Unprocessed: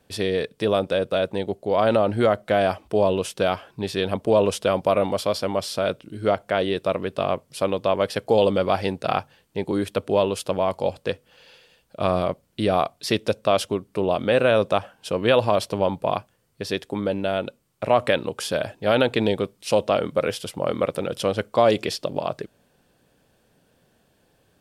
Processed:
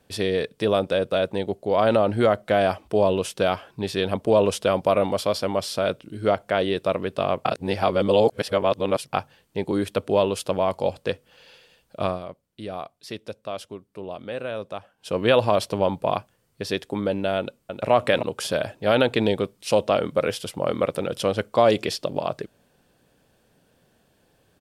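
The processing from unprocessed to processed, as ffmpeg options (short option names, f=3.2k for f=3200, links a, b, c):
-filter_complex "[0:a]asplit=2[a][b];[b]afade=t=in:st=17.38:d=0.01,afade=t=out:st=17.91:d=0.01,aecho=0:1:310|620|930:0.530884|0.0796327|0.0119449[c];[a][c]amix=inputs=2:normalize=0,asplit=5[d][e][f][g][h];[d]atrim=end=7.452[i];[e]atrim=start=7.448:end=9.132,asetpts=PTS-STARTPTS,areverse[j];[f]atrim=start=9.128:end=12.19,asetpts=PTS-STARTPTS,afade=t=out:st=2.872:d=0.19:silence=0.237137[k];[g]atrim=start=12.19:end=14.97,asetpts=PTS-STARTPTS,volume=-12.5dB[l];[h]atrim=start=14.97,asetpts=PTS-STARTPTS,afade=t=in:d=0.19:silence=0.237137[m];[i][j]acrossfade=d=0.004:c1=hsin:c2=hsin[n];[k][l][m]concat=n=3:v=0:a=1[o];[n][o]acrossfade=d=0.004:c1=hsin:c2=hsin"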